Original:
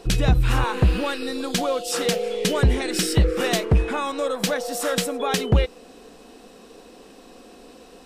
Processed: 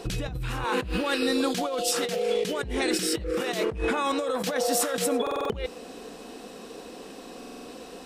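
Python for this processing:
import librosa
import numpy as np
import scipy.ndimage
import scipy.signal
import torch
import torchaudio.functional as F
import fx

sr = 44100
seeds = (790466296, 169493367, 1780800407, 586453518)

y = fx.highpass(x, sr, hz=69.0, slope=6)
y = fx.over_compress(y, sr, threshold_db=-28.0, ratio=-1.0)
y = fx.buffer_glitch(y, sr, at_s=(5.22, 7.38), block=2048, repeats=5)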